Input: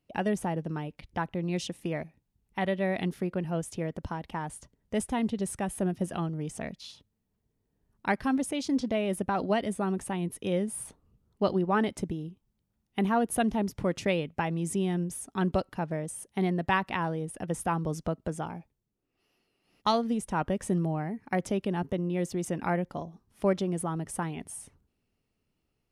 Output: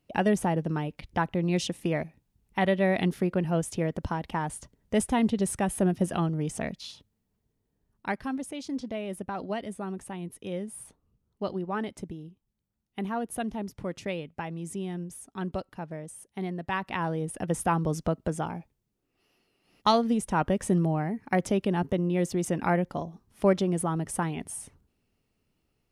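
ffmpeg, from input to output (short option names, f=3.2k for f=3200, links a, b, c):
-af "volume=13.5dB,afade=t=out:st=6.57:d=1.79:silence=0.316228,afade=t=in:st=16.69:d=0.61:silence=0.354813"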